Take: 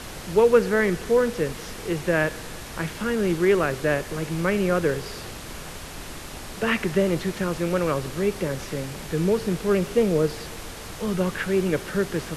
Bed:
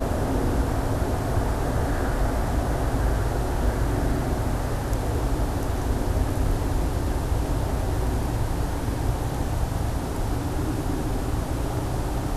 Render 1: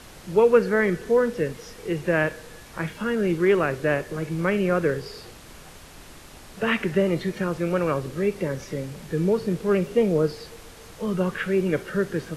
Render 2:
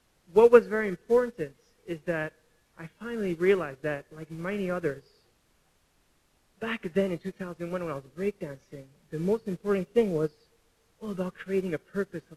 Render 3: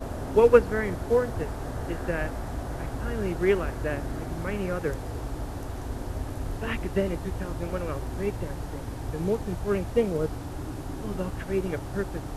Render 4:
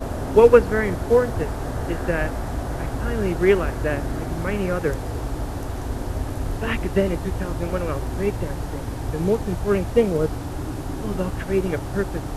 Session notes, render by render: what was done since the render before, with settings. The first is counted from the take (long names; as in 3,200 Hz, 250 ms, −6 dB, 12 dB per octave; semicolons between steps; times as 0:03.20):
noise reduction from a noise print 8 dB
in parallel at −1.5 dB: brickwall limiter −18 dBFS, peak gain reduction 12 dB; on the sum: expander for the loud parts 2.5 to 1, over −29 dBFS
mix in bed −9 dB
level +6 dB; brickwall limiter −1 dBFS, peak gain reduction 3 dB